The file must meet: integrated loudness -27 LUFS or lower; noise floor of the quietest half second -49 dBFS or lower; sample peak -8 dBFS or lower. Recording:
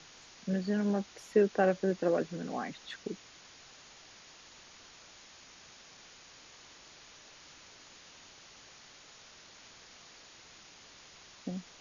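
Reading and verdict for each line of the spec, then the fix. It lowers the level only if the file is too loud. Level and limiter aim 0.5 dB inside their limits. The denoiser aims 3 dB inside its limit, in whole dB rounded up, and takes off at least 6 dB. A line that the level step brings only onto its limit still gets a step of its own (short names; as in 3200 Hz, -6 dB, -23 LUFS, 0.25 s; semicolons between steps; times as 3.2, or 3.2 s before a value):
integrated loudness -33.0 LUFS: OK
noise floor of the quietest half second -55 dBFS: OK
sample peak -14.5 dBFS: OK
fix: none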